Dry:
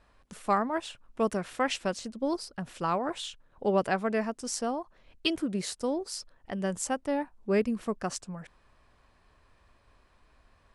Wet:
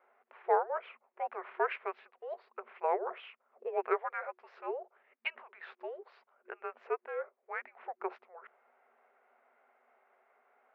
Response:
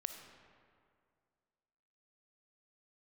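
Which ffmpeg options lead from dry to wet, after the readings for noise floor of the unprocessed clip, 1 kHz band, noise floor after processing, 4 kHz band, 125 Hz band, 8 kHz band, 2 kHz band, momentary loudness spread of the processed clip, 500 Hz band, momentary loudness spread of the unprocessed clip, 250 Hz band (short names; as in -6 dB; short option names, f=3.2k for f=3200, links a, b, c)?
-65 dBFS, -3.5 dB, -81 dBFS, -17.5 dB, under -40 dB, under -40 dB, -4.0 dB, 17 LU, -5.5 dB, 11 LU, under -20 dB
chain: -af "afftfilt=real='re*(1-between(b*sr/4096,120,720))':imag='im*(1-between(b*sr/4096,120,720))':win_size=4096:overlap=0.75,highpass=f=170:t=q:w=0.5412,highpass=f=170:t=q:w=1.307,lowpass=f=2.6k:t=q:w=0.5176,lowpass=f=2.6k:t=q:w=0.7071,lowpass=f=2.6k:t=q:w=1.932,afreqshift=-350"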